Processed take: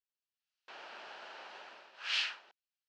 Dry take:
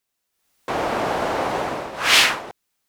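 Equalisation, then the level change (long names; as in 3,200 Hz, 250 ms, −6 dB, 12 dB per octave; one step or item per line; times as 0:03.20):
loudspeaker in its box 230–3,700 Hz, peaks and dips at 290 Hz −7 dB, 490 Hz −6 dB, 720 Hz −5 dB, 1,100 Hz −8 dB, 2,100 Hz −9 dB, 3,600 Hz −7 dB
first difference
−4.5 dB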